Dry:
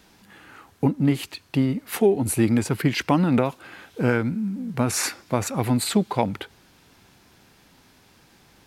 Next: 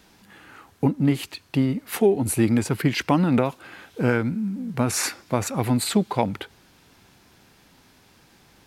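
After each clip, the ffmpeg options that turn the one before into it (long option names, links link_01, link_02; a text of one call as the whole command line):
ffmpeg -i in.wav -af anull out.wav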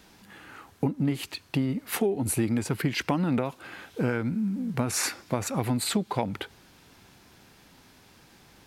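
ffmpeg -i in.wav -af "acompressor=threshold=-24dB:ratio=3" out.wav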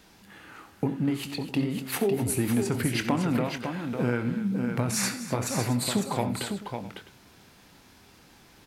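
ffmpeg -i in.wav -filter_complex "[0:a]asplit=2[link_01][link_02];[link_02]adelay=25,volume=-12dB[link_03];[link_01][link_03]amix=inputs=2:normalize=0,aecho=1:1:66|88|247|553|658:0.188|0.168|0.2|0.473|0.119,volume=-1dB" out.wav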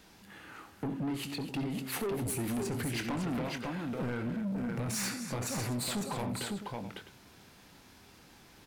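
ffmpeg -i in.wav -af "asoftclip=type=tanh:threshold=-28.5dB,volume=-2dB" out.wav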